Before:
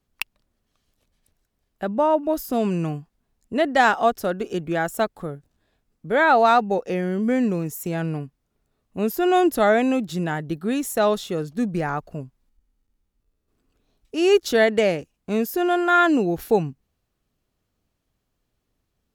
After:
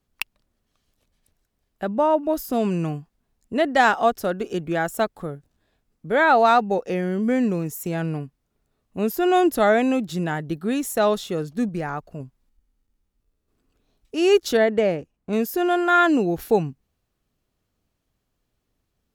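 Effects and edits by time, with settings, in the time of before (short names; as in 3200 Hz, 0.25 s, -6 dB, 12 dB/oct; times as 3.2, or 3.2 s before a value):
11.69–12.2 gain -3 dB
14.57–15.33 high shelf 2300 Hz -11.5 dB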